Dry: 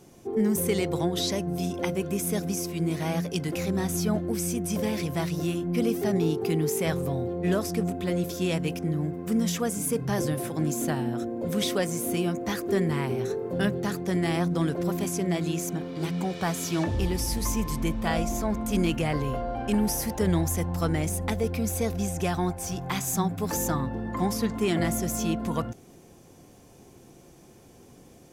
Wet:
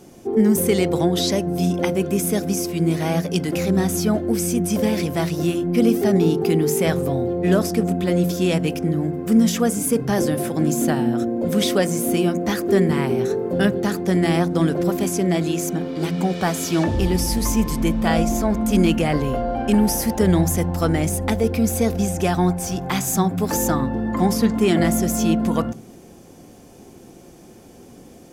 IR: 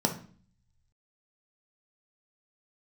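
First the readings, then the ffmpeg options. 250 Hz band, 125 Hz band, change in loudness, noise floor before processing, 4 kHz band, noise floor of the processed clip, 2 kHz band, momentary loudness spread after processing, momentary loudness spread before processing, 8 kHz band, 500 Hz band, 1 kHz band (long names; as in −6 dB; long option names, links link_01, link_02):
+8.5 dB, +6.0 dB, +7.5 dB, −52 dBFS, +6.0 dB, −45 dBFS, +6.0 dB, 5 LU, 4 LU, +6.0 dB, +8.0 dB, +7.0 dB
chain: -filter_complex "[0:a]asplit=2[link_01][link_02];[1:a]atrim=start_sample=2205,lowpass=4100[link_03];[link_02][link_03]afir=irnorm=-1:irlink=0,volume=-23.5dB[link_04];[link_01][link_04]amix=inputs=2:normalize=0,volume=6dB"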